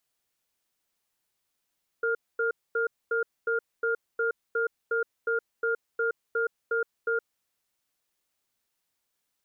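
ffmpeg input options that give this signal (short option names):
-f lavfi -i "aevalsrc='0.0473*(sin(2*PI*458*t)+sin(2*PI*1410*t))*clip(min(mod(t,0.36),0.12-mod(t,0.36))/0.005,0,1)':d=5.38:s=44100"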